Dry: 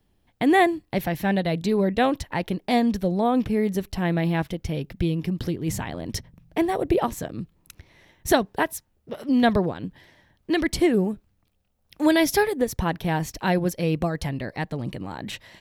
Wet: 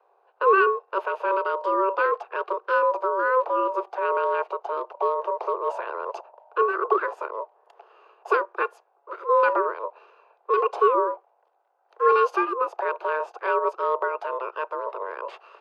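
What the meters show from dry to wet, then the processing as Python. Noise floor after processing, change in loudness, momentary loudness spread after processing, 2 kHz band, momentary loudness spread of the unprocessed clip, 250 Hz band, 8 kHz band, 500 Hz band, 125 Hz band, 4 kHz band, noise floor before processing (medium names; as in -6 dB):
-66 dBFS, -0.5 dB, 13 LU, +1.0 dB, 14 LU, -17.0 dB, under -25 dB, +1.5 dB, under -40 dB, under -10 dB, -68 dBFS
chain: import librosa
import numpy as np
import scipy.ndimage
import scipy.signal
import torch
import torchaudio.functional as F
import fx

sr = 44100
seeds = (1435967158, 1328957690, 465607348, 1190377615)

y = fx.bin_compress(x, sr, power=0.6)
y = scipy.signal.sosfilt(scipy.signal.butter(2, 10000.0, 'lowpass', fs=sr, output='sos'), y)
y = y * np.sin(2.0 * np.pi * 770.0 * np.arange(len(y)) / sr)
y = scipy.signal.sosfilt(scipy.signal.butter(12, 350.0, 'highpass', fs=sr, output='sos'), y)
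y = fx.high_shelf(y, sr, hz=4100.0, db=-11.5)
y = fx.spectral_expand(y, sr, expansion=1.5)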